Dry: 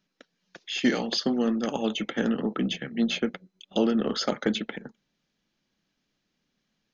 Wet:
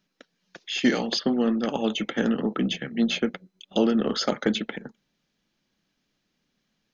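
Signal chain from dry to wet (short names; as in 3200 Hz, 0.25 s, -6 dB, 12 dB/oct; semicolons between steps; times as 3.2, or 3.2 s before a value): 1.18–1.85 LPF 3300 Hz -> 6200 Hz 24 dB/oct; gain +2 dB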